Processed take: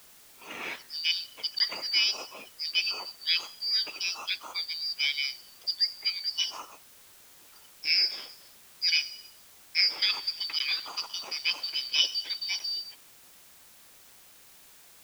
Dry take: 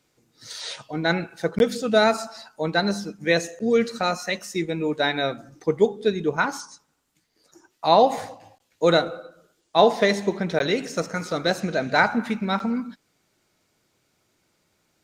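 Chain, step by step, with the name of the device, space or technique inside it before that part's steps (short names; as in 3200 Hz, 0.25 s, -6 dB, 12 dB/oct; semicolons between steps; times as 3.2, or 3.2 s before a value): split-band scrambled radio (four-band scrambler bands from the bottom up 4321; BPF 320–3000 Hz; white noise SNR 22 dB)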